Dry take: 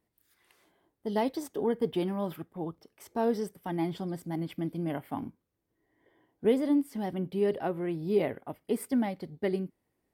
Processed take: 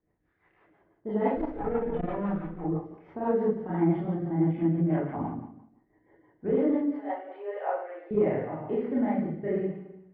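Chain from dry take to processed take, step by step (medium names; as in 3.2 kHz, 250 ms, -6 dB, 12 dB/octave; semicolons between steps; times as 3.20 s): 1.30–2.61 s: comb filter that takes the minimum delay 4 ms; low-pass 1.9 kHz 24 dB/octave; peak limiter -21.5 dBFS, peak gain reduction 7 dB; 6.94–8.11 s: elliptic high-pass 500 Hz, stop band 60 dB; reverberation RT60 0.80 s, pre-delay 26 ms, DRR -8.5 dB; rotary cabinet horn 6 Hz, later 0.7 Hz, at 6.99 s; transformer saturation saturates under 180 Hz; trim -1 dB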